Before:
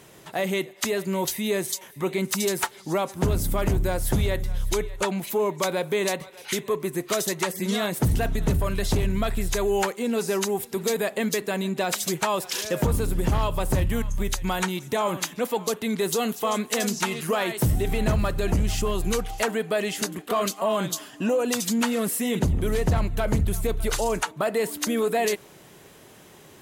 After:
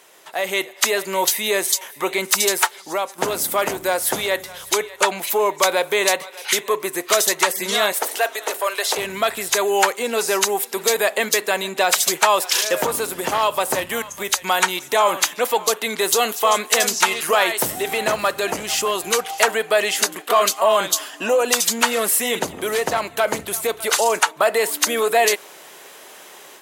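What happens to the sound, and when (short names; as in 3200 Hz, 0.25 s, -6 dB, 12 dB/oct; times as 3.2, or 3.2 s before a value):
2.48–3.18 fade out, to -8.5 dB
7.92–8.97 HPF 410 Hz 24 dB/oct
whole clip: AGC gain up to 8.5 dB; HPF 580 Hz 12 dB/oct; gain +2 dB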